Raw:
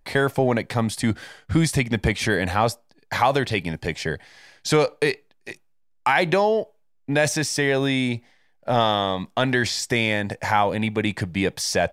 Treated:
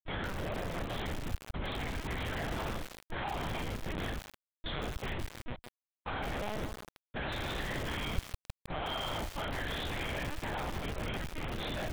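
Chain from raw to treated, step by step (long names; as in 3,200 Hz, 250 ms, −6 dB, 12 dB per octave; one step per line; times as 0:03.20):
hearing-aid frequency compression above 3,100 Hz 4 to 1
high-pass filter 1,000 Hz 12 dB per octave
downward compressor 2.5 to 1, threshold −36 dBFS, peak gain reduction 13 dB
harmonic generator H 2 −20 dB, 4 −17 dB, 5 −40 dB, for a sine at −18 dBFS
flanger 0.18 Hz, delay 2 ms, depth 9 ms, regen −45%
flutter between parallel walls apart 3.9 metres, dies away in 0.72 s
comb and all-pass reverb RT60 1.1 s, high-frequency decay 0.45×, pre-delay 25 ms, DRR 10.5 dB
comparator with hysteresis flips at −32.5 dBFS
linear-prediction vocoder at 8 kHz pitch kept
feedback echo at a low word length 157 ms, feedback 80%, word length 6 bits, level −5.5 dB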